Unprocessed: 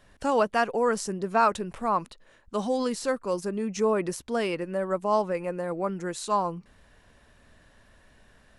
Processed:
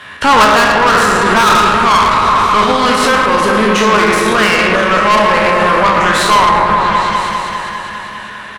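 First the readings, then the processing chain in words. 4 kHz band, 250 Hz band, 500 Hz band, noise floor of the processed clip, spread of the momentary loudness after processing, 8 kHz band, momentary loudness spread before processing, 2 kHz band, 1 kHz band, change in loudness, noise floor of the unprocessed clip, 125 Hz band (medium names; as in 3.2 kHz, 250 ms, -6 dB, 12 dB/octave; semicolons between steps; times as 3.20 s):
+26.0 dB, +14.5 dB, +13.0 dB, -28 dBFS, 10 LU, +17.5 dB, 8 LU, +25.0 dB, +20.5 dB, +18.0 dB, -60 dBFS, +16.5 dB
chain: spectral sustain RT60 0.75 s; in parallel at -2.5 dB: compression, threshold -33 dBFS, peak gain reduction 16 dB; on the sum: high-pass 84 Hz 24 dB/octave; high-order bell 1.9 kHz +13 dB 2.3 oct; feedback comb 210 Hz, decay 1.1 s, mix 80%; speakerphone echo 110 ms, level -8 dB; valve stage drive 31 dB, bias 0.65; on a send: delay with an opening low-pass 201 ms, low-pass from 750 Hz, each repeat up 1 oct, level -3 dB; on the sum: loudness maximiser +29 dB; trim -1 dB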